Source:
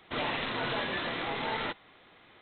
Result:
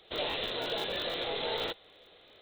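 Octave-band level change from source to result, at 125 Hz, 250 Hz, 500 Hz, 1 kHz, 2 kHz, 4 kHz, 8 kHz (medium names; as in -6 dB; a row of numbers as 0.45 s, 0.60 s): -7.0 dB, -5.5 dB, +2.0 dB, -5.0 dB, -5.5 dB, +3.5 dB, no reading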